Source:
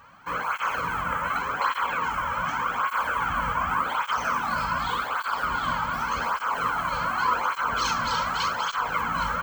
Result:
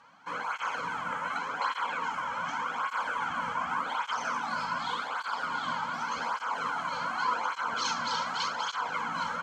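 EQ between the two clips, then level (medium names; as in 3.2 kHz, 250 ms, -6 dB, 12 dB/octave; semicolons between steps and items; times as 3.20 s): cabinet simulation 240–8500 Hz, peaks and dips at 380 Hz -8 dB, 590 Hz -5 dB, 1.2 kHz -7 dB, 1.8 kHz -5 dB, 2.6 kHz -5 dB, 8.1 kHz -6 dB; -1.5 dB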